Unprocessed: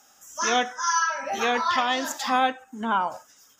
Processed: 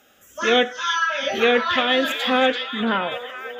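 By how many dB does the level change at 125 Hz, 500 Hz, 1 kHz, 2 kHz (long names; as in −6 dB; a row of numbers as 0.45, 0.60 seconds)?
can't be measured, +10.0 dB, −0.5 dB, +6.0 dB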